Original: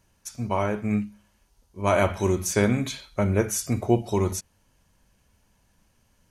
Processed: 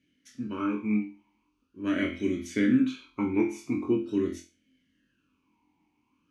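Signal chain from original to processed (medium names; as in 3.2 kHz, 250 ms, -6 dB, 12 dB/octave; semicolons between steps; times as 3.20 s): on a send: flutter echo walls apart 4 m, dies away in 0.31 s; on the sum: talking filter i-u 0.43 Hz; trim +8 dB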